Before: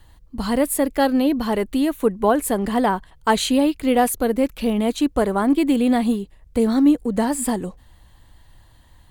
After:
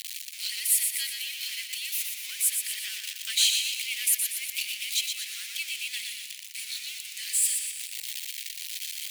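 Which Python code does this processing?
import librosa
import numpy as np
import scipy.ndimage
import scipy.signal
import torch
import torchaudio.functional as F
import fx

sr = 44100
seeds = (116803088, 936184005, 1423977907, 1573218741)

y = x + 0.5 * 10.0 ** (-23.0 / 20.0) * np.sign(x)
y = scipy.signal.sosfilt(scipy.signal.ellip(4, 1.0, 60, 2300.0, 'highpass', fs=sr, output='sos'), y)
y = fx.echo_feedback(y, sr, ms=120, feedback_pct=51, wet_db=-5.5)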